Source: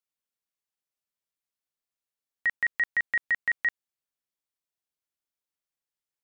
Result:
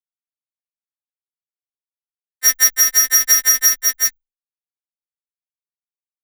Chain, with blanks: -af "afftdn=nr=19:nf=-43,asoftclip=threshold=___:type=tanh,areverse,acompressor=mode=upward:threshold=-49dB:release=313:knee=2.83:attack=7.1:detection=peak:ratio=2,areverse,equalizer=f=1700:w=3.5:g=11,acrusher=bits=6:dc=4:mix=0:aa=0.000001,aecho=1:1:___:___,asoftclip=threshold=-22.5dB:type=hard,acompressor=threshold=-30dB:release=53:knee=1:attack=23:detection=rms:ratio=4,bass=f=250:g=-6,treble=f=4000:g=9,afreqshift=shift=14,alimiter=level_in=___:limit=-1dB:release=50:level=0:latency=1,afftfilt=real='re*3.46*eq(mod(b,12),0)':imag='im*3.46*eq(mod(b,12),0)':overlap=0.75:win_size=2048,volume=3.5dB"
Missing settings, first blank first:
-35dB, 377, 0.398, 20.5dB